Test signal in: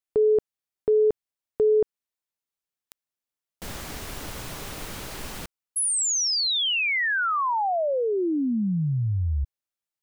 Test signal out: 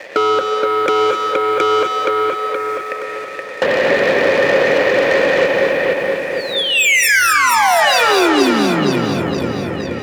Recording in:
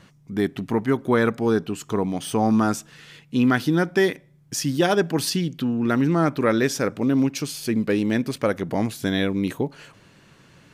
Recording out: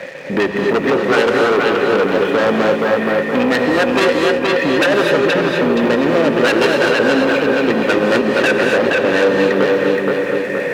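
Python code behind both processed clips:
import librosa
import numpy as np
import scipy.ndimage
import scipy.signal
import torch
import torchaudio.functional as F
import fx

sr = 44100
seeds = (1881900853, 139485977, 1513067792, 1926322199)

p1 = fx.octave_divider(x, sr, octaves=2, level_db=-4.0)
p2 = fx.recorder_agc(p1, sr, target_db=-11.5, rise_db_per_s=13.0, max_gain_db=30)
p3 = fx.quant_dither(p2, sr, seeds[0], bits=6, dither='triangular')
p4 = p2 + F.gain(torch.from_numpy(p3), -5.0).numpy()
p5 = fx.formant_cascade(p4, sr, vowel='e')
p6 = fx.fold_sine(p5, sr, drive_db=17, ceiling_db=-8.5)
p7 = p6 + fx.echo_feedback(p6, sr, ms=472, feedback_pct=40, wet_db=-5, dry=0)
p8 = fx.leveller(p7, sr, passes=2)
p9 = scipy.signal.sosfilt(scipy.signal.butter(2, 230.0, 'highpass', fs=sr, output='sos'), p8)
p10 = fx.rev_gated(p9, sr, seeds[1], gate_ms=280, shape='rising', drr_db=3.0)
p11 = fx.band_squash(p10, sr, depth_pct=40)
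y = F.gain(torch.from_numpy(p11), -6.0).numpy()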